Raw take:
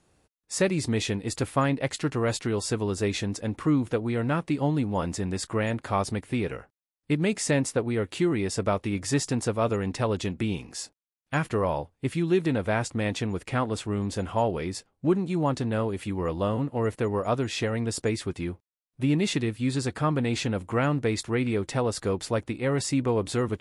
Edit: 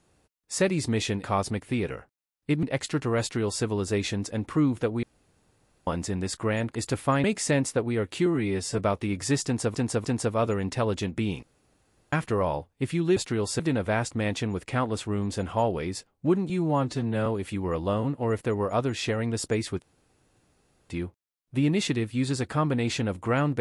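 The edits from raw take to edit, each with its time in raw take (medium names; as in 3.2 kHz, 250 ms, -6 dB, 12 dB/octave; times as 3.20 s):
1.24–1.73 s: swap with 5.85–7.24 s
2.31–2.74 s: copy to 12.39 s
4.13–4.97 s: room tone
8.26–8.61 s: stretch 1.5×
9.27–9.57 s: loop, 3 plays
10.65–11.35 s: room tone
15.29–15.80 s: stretch 1.5×
18.36 s: insert room tone 1.08 s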